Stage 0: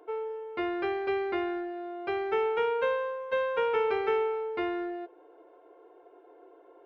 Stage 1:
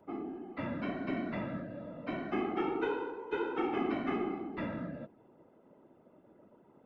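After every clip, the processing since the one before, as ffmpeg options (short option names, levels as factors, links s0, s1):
-af "afreqshift=-120,afftfilt=real='hypot(re,im)*cos(2*PI*random(0))':imag='hypot(re,im)*sin(2*PI*random(1))':win_size=512:overlap=0.75"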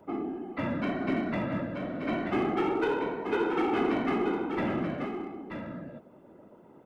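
-filter_complex "[0:a]asplit=2[s0][s1];[s1]aeval=exprs='0.0251*(abs(mod(val(0)/0.0251+3,4)-2)-1)':c=same,volume=0.335[s2];[s0][s2]amix=inputs=2:normalize=0,aecho=1:1:932:0.447,volume=1.58"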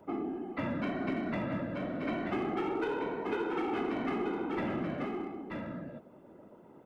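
-af "acompressor=threshold=0.0355:ratio=6,volume=0.891"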